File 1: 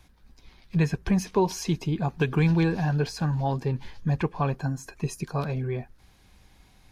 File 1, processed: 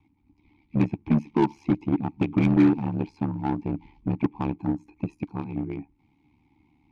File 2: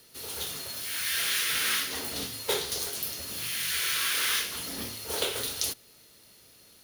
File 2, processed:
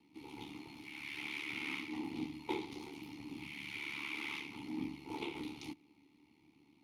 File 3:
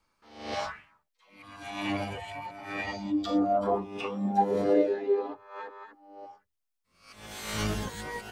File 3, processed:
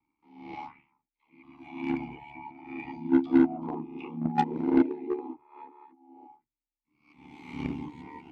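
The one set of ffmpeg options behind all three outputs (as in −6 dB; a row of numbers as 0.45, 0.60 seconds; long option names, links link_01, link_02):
-filter_complex "[0:a]highshelf=frequency=5200:gain=6,aeval=exprs='val(0)*sin(2*PI*36*n/s)':channel_layout=same,asplit=3[link_01][link_02][link_03];[link_01]bandpass=frequency=300:width_type=q:width=8,volume=0dB[link_04];[link_02]bandpass=frequency=870:width_type=q:width=8,volume=-6dB[link_05];[link_03]bandpass=frequency=2240:width_type=q:width=8,volume=-9dB[link_06];[link_04][link_05][link_06]amix=inputs=3:normalize=0,bass=frequency=250:gain=12,treble=frequency=4000:gain=-7,asplit=2[link_07][link_08];[link_08]acrusher=bits=4:mix=0:aa=0.5,volume=-4.5dB[link_09];[link_07][link_09]amix=inputs=2:normalize=0,volume=7.5dB"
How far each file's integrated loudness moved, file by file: +1.0, −14.5, +1.5 LU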